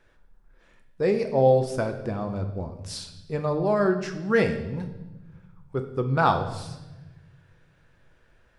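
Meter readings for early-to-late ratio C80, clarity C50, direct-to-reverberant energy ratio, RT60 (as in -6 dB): 12.0 dB, 10.0 dB, 5.5 dB, 1.1 s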